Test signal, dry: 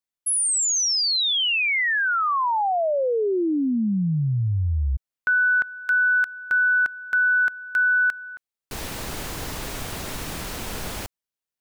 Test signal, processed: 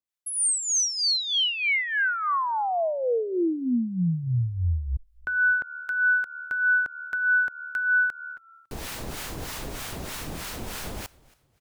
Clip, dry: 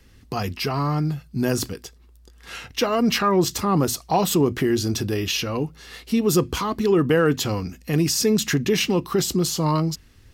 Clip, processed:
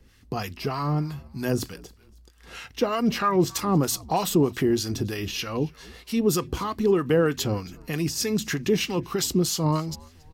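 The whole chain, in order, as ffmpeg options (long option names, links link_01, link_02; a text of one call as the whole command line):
ffmpeg -i in.wav -filter_complex "[0:a]acrossover=split=830[link_01][link_02];[link_01]aeval=exprs='val(0)*(1-0.7/2+0.7/2*cos(2*PI*3.2*n/s))':channel_layout=same[link_03];[link_02]aeval=exprs='val(0)*(1-0.7/2-0.7/2*cos(2*PI*3.2*n/s))':channel_layout=same[link_04];[link_03][link_04]amix=inputs=2:normalize=0,asplit=3[link_05][link_06][link_07];[link_06]adelay=277,afreqshift=-75,volume=-23.5dB[link_08];[link_07]adelay=554,afreqshift=-150,volume=-32.6dB[link_09];[link_05][link_08][link_09]amix=inputs=3:normalize=0" out.wav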